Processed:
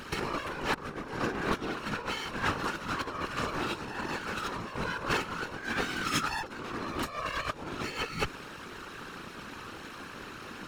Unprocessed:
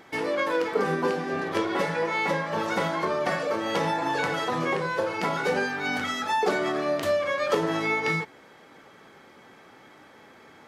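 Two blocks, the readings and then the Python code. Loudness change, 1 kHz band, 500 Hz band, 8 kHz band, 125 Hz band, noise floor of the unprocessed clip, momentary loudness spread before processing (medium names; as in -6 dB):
-8.0 dB, -6.5 dB, -12.5 dB, -0.5 dB, -4.0 dB, -52 dBFS, 3 LU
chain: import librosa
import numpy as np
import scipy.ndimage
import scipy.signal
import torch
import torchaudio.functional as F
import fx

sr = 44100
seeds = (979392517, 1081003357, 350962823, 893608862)

y = fx.lower_of_two(x, sr, delay_ms=0.73)
y = fx.over_compress(y, sr, threshold_db=-35.0, ratio=-0.5)
y = fx.whisperise(y, sr, seeds[0])
y = y * librosa.db_to_amplitude(2.5)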